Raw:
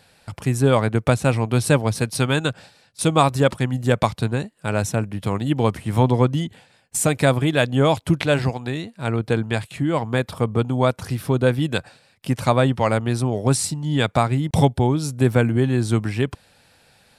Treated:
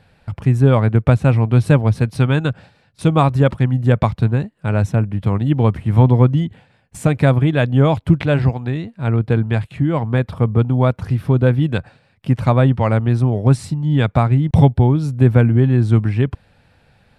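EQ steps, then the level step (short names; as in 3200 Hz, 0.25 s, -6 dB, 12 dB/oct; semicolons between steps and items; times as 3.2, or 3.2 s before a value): tone controls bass +4 dB, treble -14 dB; low shelf 130 Hz +7.5 dB; 0.0 dB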